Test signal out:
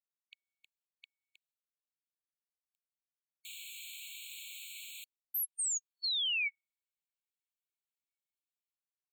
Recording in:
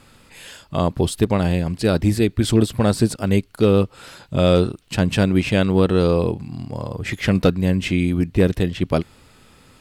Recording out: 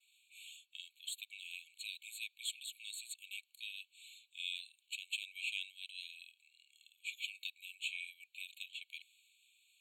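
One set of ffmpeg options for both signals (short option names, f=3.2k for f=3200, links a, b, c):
-af "tiltshelf=f=720:g=6,agate=range=-33dB:threshold=-44dB:ratio=3:detection=peak,afftfilt=real='re*eq(mod(floor(b*sr/1024/2200),2),1)':imag='im*eq(mod(floor(b*sr/1024/2200),2),1)':win_size=1024:overlap=0.75,volume=-6dB"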